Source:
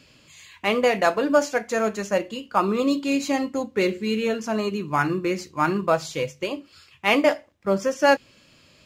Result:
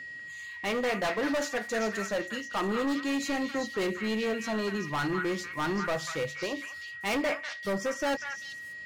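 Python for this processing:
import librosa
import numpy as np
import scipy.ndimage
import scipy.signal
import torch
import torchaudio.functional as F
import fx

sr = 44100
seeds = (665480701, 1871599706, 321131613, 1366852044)

y = np.clip(x, -10.0 ** (-22.0 / 20.0), 10.0 ** (-22.0 / 20.0))
y = y + 10.0 ** (-35.0 / 20.0) * np.sin(2.0 * np.pi * 1900.0 * np.arange(len(y)) / sr)
y = fx.echo_stepped(y, sr, ms=194, hz=1700.0, octaves=1.4, feedback_pct=70, wet_db=-0.5)
y = y * 10.0 ** (-4.5 / 20.0)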